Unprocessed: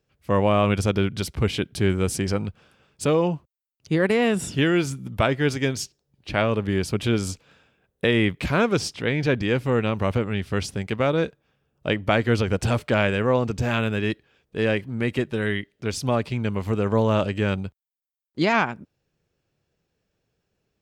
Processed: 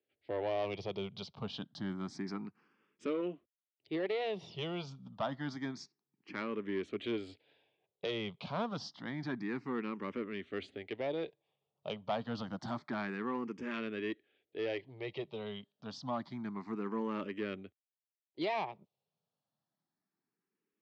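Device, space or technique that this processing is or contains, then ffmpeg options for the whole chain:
barber-pole phaser into a guitar amplifier: -filter_complex "[0:a]highpass=240,highshelf=frequency=6300:gain=-4.5,asplit=2[link_01][link_02];[link_02]afreqshift=0.28[link_03];[link_01][link_03]amix=inputs=2:normalize=1,asoftclip=type=tanh:threshold=-18dB,highpass=82,equalizer=frequency=510:width_type=q:width=4:gain=-6,equalizer=frequency=1500:width_type=q:width=4:gain=-7,equalizer=frequency=2600:width_type=q:width=4:gain=-5,lowpass=frequency=4500:width=0.5412,lowpass=frequency=4500:width=1.3066,volume=-7dB"

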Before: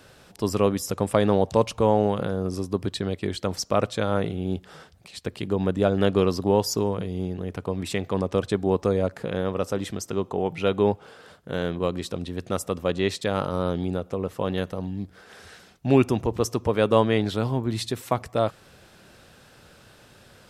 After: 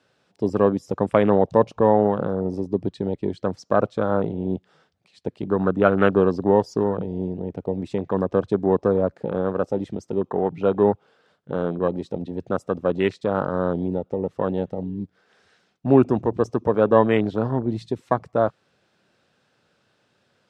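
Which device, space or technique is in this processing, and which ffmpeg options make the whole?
over-cleaned archive recording: -filter_complex "[0:a]asettb=1/sr,asplit=3[link_01][link_02][link_03];[link_01]atrim=end=5.514[link_04];[link_02]atrim=start=5.51:end=6.13,asetpts=PTS-STARTPTS,afade=type=in:duration=0.004:curve=qsin,afade=type=out:start_time=0.616:duration=0.004:curve=qsin,equalizer=frequency=1300:width_type=o:width=0.54:gain=10.5[link_05];[link_03]atrim=start=6.126[link_06];[link_04][link_05]acrossfade=duration=0.004:curve1=hsin:curve2=qsin[link_07];[link_07][link_06]acrossfade=duration=0.004:curve1=qsin:curve2=hsin,highpass=130,lowpass=6200,afwtdn=0.0316,volume=3.5dB"

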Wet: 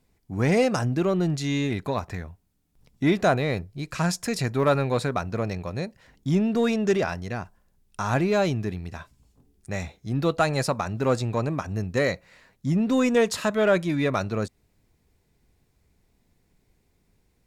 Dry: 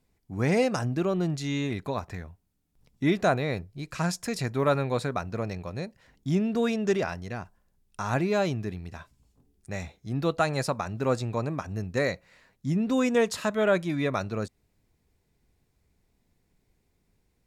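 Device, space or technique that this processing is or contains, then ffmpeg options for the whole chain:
parallel distortion: -filter_complex "[0:a]asplit=2[link_01][link_02];[link_02]asoftclip=type=hard:threshold=-26.5dB,volume=-9dB[link_03];[link_01][link_03]amix=inputs=2:normalize=0,volume=1.5dB"

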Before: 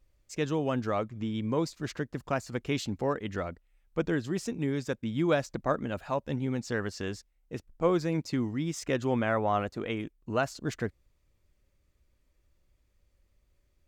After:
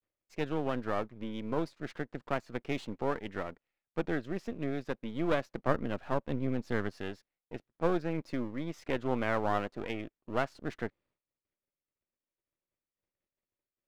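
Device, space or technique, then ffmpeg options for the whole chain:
crystal radio: -filter_complex "[0:a]agate=range=-33dB:threshold=-58dB:ratio=3:detection=peak,highpass=210,lowpass=2900,aeval=exprs='if(lt(val(0),0),0.251*val(0),val(0))':channel_layout=same,asettb=1/sr,asplit=3[link_01][link_02][link_03];[link_01]atrim=end=5.674[link_04];[link_02]atrim=start=5.67:end=6.92,asetpts=PTS-STARTPTS,afade=type=in:duration=0.004:curve=qsin,afade=type=out:start_time=1.246:duration=0.004:curve=qsin,lowshelf=frequency=320:gain=6[link_05];[link_03]atrim=start=6.916[link_06];[link_04][link_05]acrossfade=duration=0.004:curve1=hsin:curve2=qsin[link_07];[link_07][link_06]acrossfade=duration=0.004:curve1=qsin:curve2=hsin"

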